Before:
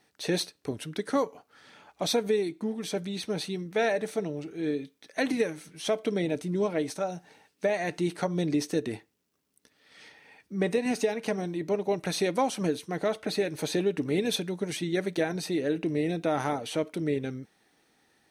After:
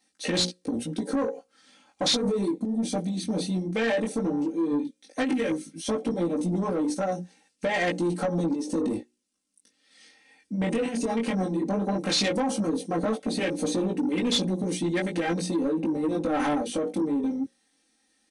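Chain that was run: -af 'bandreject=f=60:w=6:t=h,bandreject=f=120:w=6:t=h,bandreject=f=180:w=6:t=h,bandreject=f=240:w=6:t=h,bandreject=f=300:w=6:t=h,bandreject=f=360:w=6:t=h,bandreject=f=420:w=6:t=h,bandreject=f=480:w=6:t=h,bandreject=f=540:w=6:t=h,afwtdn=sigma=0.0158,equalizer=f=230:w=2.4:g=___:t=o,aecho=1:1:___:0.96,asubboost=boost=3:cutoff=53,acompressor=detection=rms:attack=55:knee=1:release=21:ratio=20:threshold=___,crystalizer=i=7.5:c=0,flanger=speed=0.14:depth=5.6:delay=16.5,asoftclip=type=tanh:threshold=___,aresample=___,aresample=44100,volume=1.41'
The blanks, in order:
11, 3.8, 0.0501, 0.0708, 22050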